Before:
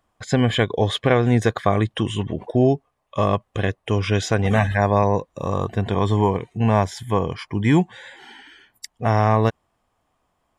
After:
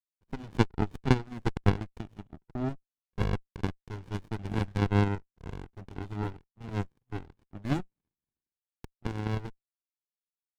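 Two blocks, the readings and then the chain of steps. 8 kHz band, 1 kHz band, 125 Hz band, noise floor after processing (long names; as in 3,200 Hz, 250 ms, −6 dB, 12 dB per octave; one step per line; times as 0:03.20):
below −15 dB, −16.0 dB, −10.5 dB, below −85 dBFS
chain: coupled-rooms reverb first 0.55 s, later 2.7 s, from −13 dB, DRR 19 dB
power curve on the samples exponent 3
in parallel at +2 dB: downward compressor, threshold −37 dBFS, peak gain reduction 19.5 dB
on the sum: windowed peak hold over 65 samples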